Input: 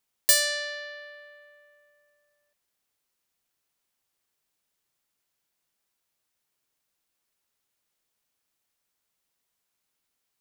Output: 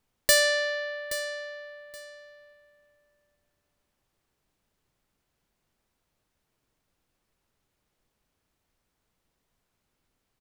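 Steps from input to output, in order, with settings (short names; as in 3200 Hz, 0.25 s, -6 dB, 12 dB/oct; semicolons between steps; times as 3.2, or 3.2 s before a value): tilt -3 dB/oct; on a send: feedback echo 0.824 s, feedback 21%, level -14 dB; on the sum: gain +6.5 dB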